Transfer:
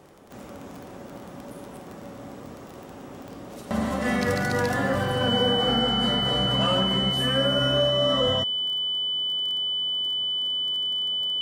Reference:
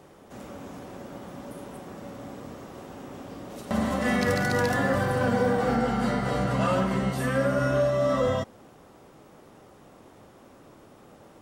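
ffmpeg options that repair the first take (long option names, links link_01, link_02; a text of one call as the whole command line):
ffmpeg -i in.wav -af "adeclick=threshold=4,bandreject=frequency=3000:width=30" out.wav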